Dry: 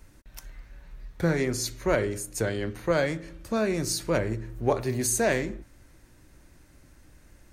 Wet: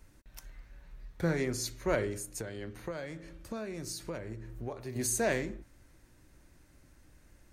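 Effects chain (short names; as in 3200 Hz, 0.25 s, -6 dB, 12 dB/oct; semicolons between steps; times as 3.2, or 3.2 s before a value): 2.25–4.96 compressor 6:1, threshold -31 dBFS, peak gain reduction 12.5 dB; gain -5.5 dB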